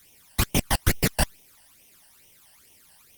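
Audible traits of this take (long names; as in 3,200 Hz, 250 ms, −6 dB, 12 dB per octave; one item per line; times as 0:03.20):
a quantiser's noise floor 10 bits, dither triangular
phaser sweep stages 12, 2.3 Hz, lowest notch 380–1,500 Hz
Opus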